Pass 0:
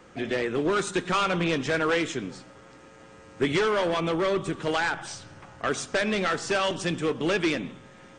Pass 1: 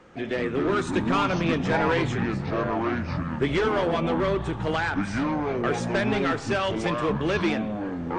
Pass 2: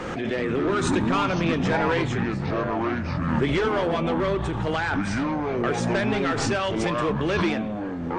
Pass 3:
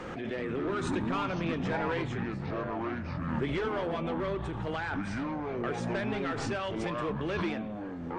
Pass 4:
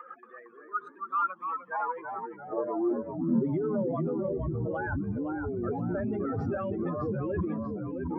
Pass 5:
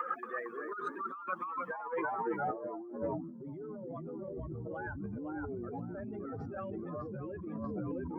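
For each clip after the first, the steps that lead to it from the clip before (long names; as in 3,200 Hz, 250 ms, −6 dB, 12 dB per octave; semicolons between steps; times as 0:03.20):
high-shelf EQ 5,800 Hz −12 dB; delay with pitch and tempo change per echo 134 ms, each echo −6 semitones, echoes 3
background raised ahead of every attack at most 25 dB per second
dynamic equaliser 6,900 Hz, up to −5 dB, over −50 dBFS, Q 0.84; level −8.5 dB
expanding power law on the bin magnitudes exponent 2.7; high-pass filter sweep 1,300 Hz → 76 Hz, 0:01.56–0:04.33; delay with pitch and tempo change per echo 229 ms, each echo −1 semitone, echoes 3, each echo −6 dB
compressor whose output falls as the input rises −41 dBFS, ratio −1; level +1 dB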